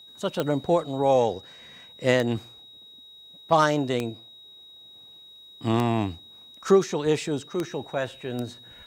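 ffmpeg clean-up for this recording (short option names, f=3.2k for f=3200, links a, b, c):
-af "adeclick=t=4,bandreject=f=3.8k:w=30"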